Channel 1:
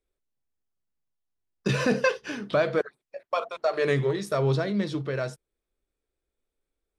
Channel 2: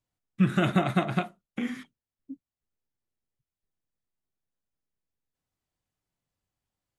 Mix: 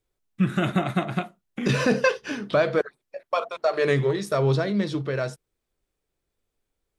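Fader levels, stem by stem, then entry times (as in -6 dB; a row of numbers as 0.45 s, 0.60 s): +2.5 dB, +0.5 dB; 0.00 s, 0.00 s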